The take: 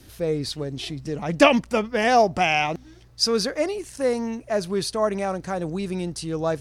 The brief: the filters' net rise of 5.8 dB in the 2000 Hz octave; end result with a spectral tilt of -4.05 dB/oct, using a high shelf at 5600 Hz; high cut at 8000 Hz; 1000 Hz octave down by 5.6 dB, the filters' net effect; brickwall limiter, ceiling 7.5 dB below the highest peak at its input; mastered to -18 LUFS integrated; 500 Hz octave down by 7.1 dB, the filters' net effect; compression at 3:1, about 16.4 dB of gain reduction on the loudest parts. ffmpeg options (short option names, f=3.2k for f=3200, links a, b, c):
-af "lowpass=8k,equalizer=f=500:t=o:g=-7.5,equalizer=f=1k:t=o:g=-6.5,equalizer=f=2k:t=o:g=8,highshelf=f=5.6k:g=8.5,acompressor=threshold=-34dB:ratio=3,volume=18.5dB,alimiter=limit=-7.5dB:level=0:latency=1"